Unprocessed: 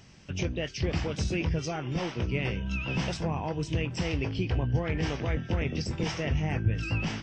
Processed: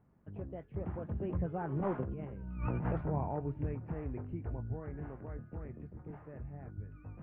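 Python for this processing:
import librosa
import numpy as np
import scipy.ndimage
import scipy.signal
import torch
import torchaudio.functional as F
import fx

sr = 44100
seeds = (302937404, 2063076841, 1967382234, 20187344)

y = fx.doppler_pass(x, sr, speed_mps=27, closest_m=3.1, pass_at_s=2.38)
y = scipy.signal.sosfilt(scipy.signal.cheby2(4, 70, 5900.0, 'lowpass', fs=sr, output='sos'), y)
y = fx.over_compress(y, sr, threshold_db=-45.0, ratio=-1.0)
y = F.gain(torch.from_numpy(y), 9.5).numpy()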